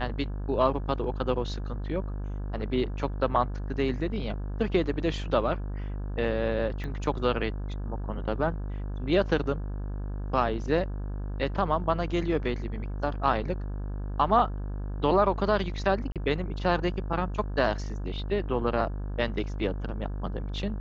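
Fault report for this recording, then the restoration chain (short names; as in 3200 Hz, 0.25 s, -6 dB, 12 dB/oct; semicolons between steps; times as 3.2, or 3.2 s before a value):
buzz 50 Hz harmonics 34 -33 dBFS
6.84 pop -25 dBFS
16.12–16.16 gap 37 ms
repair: de-click; de-hum 50 Hz, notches 34; interpolate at 16.12, 37 ms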